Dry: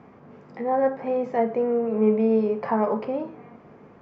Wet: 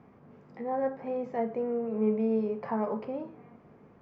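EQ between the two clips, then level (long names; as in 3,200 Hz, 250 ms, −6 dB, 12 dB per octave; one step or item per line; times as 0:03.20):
low-shelf EQ 200 Hz +6 dB
−9.0 dB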